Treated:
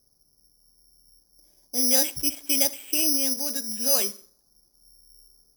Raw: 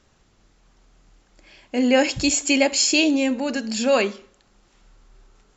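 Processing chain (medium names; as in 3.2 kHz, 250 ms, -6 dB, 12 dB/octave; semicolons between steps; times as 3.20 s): level-controlled noise filter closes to 670 Hz, open at -14 dBFS; careless resampling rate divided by 8×, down filtered, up zero stuff; trim -12.5 dB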